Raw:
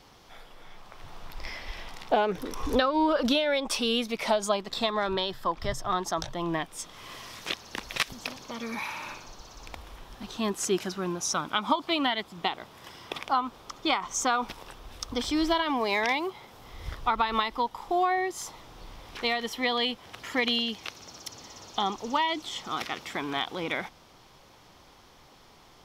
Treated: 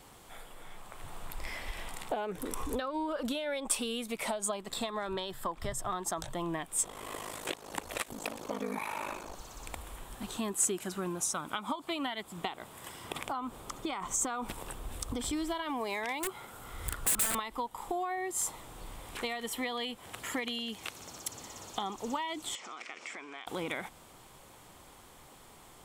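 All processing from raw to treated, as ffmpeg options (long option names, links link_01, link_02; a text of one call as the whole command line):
ffmpeg -i in.wav -filter_complex "[0:a]asettb=1/sr,asplit=3[link_01][link_02][link_03];[link_01]atrim=end=6.834[link_04];[link_02]atrim=start=6.83:end=9.35,asetpts=PTS-STARTPTS,afade=type=in:duration=0.004:curve=qsin,afade=type=out:start_time=2.516:duration=0.004:curve=qsin,equalizer=frequency=490:width_type=o:width=2.4:gain=11,aeval=exprs='val(0)*sin(2*PI*26*n/s)':channel_layout=same[link_05];[link_03]atrim=start=9.346[link_06];[link_04][link_05]acrossfade=duration=0.004:curve1=hsin:curve2=qsin[link_07];[link_07][link_06]acrossfade=duration=0.004:curve1=qsin:curve2=hsin,asettb=1/sr,asplit=3[link_08][link_09][link_10];[link_08]atrim=end=13.044[link_11];[link_09]atrim=start=13.04:end=15.33,asetpts=PTS-STARTPTS,afade=type=in:duration=0.004:curve=qsin,afade=type=out:start_time=2.286:duration=0.004:curve=qsin,lowshelf=frequency=460:gain=5.5,acompressor=threshold=-30dB:ratio=2.5:attack=3.2:release=140:knee=1:detection=peak[link_12];[link_10]atrim=start=15.326[link_13];[link_11][link_12]acrossfade=duration=0.004:curve1=hsin:curve2=qsin[link_14];[link_14][link_13]acrossfade=duration=0.004:curve1=qsin:curve2=hsin,asettb=1/sr,asplit=3[link_15][link_16][link_17];[link_15]atrim=end=16.204[link_18];[link_16]atrim=start=16.2:end=17.35,asetpts=PTS-STARTPTS,afade=type=in:duration=0.004:curve=qsin,afade=type=out:start_time=1.146:duration=0.004:curve=qsin,equalizer=frequency=1400:width_type=o:width=0.23:gain=12,aeval=exprs='(mod(17.8*val(0)+1,2)-1)/17.8':channel_layout=same[link_19];[link_17]atrim=start=17.346[link_20];[link_18][link_19]acrossfade=duration=0.004:curve1=hsin:curve2=qsin[link_21];[link_21][link_20]acrossfade=duration=0.004:curve1=qsin:curve2=hsin,asettb=1/sr,asplit=3[link_22][link_23][link_24];[link_22]atrim=end=22.554[link_25];[link_23]atrim=start=22.55:end=23.47,asetpts=PTS-STARTPTS,afade=type=in:duration=0.004:curve=qsin,afade=type=out:start_time=0.916:duration=0.004:curve=qsin,acompressor=threshold=-40dB:ratio=8:attack=3.2:release=140:knee=1:detection=peak,highpass=360,equalizer=frequency=850:width_type=q:width=4:gain=-4,equalizer=frequency=2300:width_type=q:width=4:gain=8,equalizer=frequency=3700:width_type=q:width=4:gain=-5,equalizer=frequency=5500:width_type=q:width=4:gain=5,lowpass=frequency=6900:width=0.5412,lowpass=frequency=6900:width=1.3066[link_26];[link_24]atrim=start=23.466[link_27];[link_25][link_26]acrossfade=duration=0.004:curve1=hsin:curve2=qsin[link_28];[link_28][link_27]acrossfade=duration=0.004:curve1=qsin:curve2=hsin,acompressor=threshold=-32dB:ratio=6,highshelf=frequency=6700:width_type=q:width=3:gain=7" out.wav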